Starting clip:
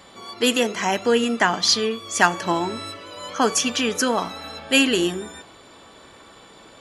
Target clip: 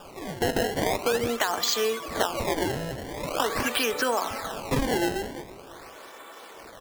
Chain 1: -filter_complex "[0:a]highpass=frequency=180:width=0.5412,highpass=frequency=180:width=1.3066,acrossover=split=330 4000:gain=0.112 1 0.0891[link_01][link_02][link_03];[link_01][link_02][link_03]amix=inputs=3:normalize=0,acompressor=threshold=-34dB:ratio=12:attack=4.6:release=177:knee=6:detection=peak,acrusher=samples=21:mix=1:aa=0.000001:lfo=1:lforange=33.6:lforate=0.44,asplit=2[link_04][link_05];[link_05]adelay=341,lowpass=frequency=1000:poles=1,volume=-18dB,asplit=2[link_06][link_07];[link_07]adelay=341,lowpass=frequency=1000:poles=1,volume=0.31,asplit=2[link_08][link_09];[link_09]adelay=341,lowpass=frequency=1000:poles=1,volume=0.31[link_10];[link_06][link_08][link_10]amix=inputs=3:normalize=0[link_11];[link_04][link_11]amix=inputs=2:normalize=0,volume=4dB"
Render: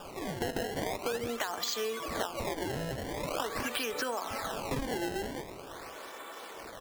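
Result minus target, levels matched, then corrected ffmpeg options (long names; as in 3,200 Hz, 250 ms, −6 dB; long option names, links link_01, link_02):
downward compressor: peak gain reduction +9 dB
-filter_complex "[0:a]highpass=frequency=180:width=0.5412,highpass=frequency=180:width=1.3066,acrossover=split=330 4000:gain=0.112 1 0.0891[link_01][link_02][link_03];[link_01][link_02][link_03]amix=inputs=3:normalize=0,acompressor=threshold=-24dB:ratio=12:attack=4.6:release=177:knee=6:detection=peak,acrusher=samples=21:mix=1:aa=0.000001:lfo=1:lforange=33.6:lforate=0.44,asplit=2[link_04][link_05];[link_05]adelay=341,lowpass=frequency=1000:poles=1,volume=-18dB,asplit=2[link_06][link_07];[link_07]adelay=341,lowpass=frequency=1000:poles=1,volume=0.31,asplit=2[link_08][link_09];[link_09]adelay=341,lowpass=frequency=1000:poles=1,volume=0.31[link_10];[link_06][link_08][link_10]amix=inputs=3:normalize=0[link_11];[link_04][link_11]amix=inputs=2:normalize=0,volume=4dB"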